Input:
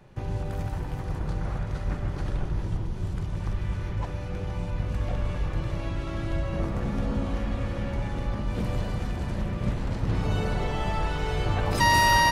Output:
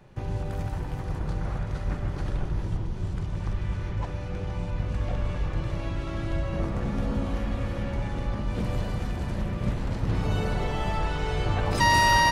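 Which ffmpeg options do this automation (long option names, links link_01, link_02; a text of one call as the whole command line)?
ffmpeg -i in.wav -af "asetnsamples=nb_out_samples=441:pad=0,asendcmd='2.76 equalizer g -12;5.64 equalizer g -5.5;6.99 equalizer g 4;7.83 equalizer g -4.5;8.7 equalizer g 1.5;10.97 equalizer g -8',equalizer=frequency=13000:width_type=o:width=0.4:gain=-2.5" out.wav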